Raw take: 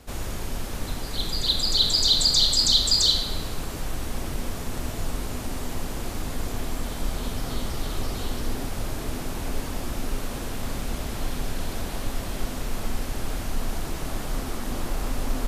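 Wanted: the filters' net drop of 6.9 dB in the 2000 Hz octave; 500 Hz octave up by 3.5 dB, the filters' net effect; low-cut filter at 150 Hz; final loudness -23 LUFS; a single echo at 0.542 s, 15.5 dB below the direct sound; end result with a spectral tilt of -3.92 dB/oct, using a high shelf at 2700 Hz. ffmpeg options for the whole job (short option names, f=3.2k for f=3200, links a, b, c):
-af "highpass=150,equalizer=f=500:t=o:g=5,equalizer=f=2k:t=o:g=-7.5,highshelf=f=2.7k:g=-4.5,aecho=1:1:542:0.168,volume=7dB"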